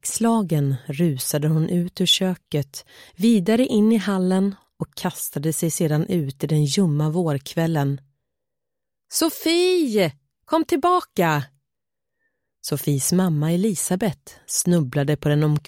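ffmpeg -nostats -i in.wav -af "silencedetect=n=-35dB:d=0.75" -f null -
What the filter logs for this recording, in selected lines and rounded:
silence_start: 7.98
silence_end: 9.12 | silence_duration: 1.13
silence_start: 11.45
silence_end: 12.64 | silence_duration: 1.19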